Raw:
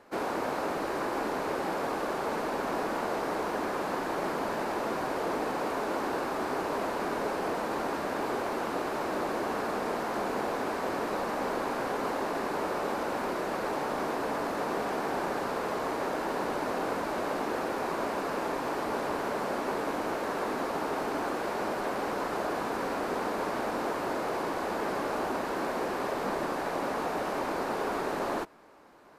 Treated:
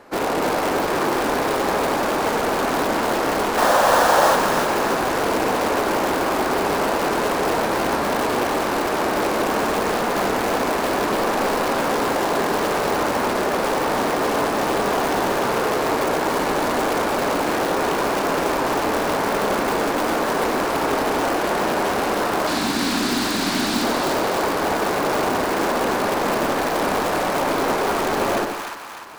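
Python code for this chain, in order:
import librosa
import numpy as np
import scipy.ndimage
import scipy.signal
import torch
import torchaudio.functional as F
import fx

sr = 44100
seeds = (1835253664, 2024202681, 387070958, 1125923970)

p1 = fx.spec_box(x, sr, start_s=3.58, length_s=0.77, low_hz=470.0, high_hz=1900.0, gain_db=11)
p2 = fx.graphic_eq(p1, sr, hz=(250, 500, 1000, 4000, 8000), db=(9, -11, -4, 12, 7), at=(22.47, 23.84))
p3 = (np.mod(10.0 ** (25.0 / 20.0) * p2 + 1.0, 2.0) - 1.0) / 10.0 ** (25.0 / 20.0)
p4 = p2 + (p3 * librosa.db_to_amplitude(-3.5))
p5 = fx.echo_split(p4, sr, split_hz=890.0, low_ms=81, high_ms=300, feedback_pct=52, wet_db=-4.5)
y = p5 * librosa.db_to_amplitude(5.5)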